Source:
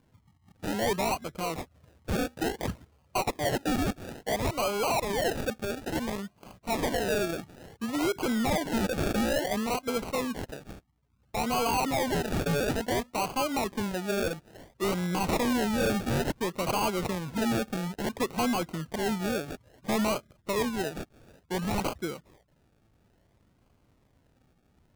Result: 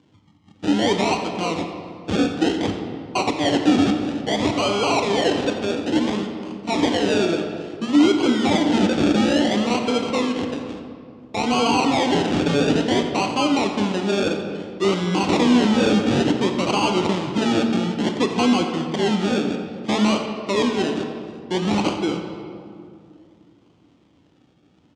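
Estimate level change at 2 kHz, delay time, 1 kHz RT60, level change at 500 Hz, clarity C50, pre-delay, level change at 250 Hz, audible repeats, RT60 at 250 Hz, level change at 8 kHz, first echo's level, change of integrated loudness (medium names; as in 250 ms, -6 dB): +7.0 dB, 87 ms, 2.2 s, +8.5 dB, 5.5 dB, 10 ms, +12.0 dB, 1, 2.8 s, +4.0 dB, -14.0 dB, +9.5 dB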